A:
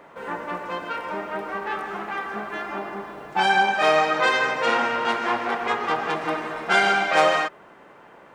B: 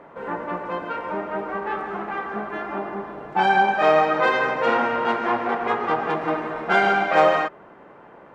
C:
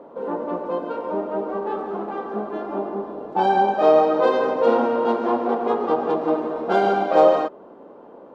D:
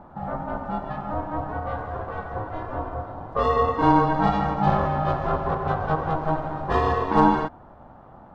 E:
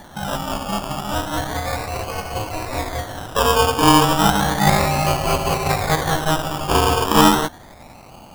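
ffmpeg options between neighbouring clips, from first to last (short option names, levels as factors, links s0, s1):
-af "lowpass=f=1100:p=1,volume=1.58"
-af "equalizer=f=125:t=o:w=1:g=-5,equalizer=f=250:t=o:w=1:g=11,equalizer=f=500:t=o:w=1:g=10,equalizer=f=1000:t=o:w=1:g=4,equalizer=f=2000:t=o:w=1:g=-11,equalizer=f=4000:t=o:w=1:g=6,volume=0.501"
-af "aeval=exprs='val(0)*sin(2*PI*320*n/s)':c=same"
-af "acrusher=samples=17:mix=1:aa=0.000001:lfo=1:lforange=10.2:lforate=0.33,volume=1.78"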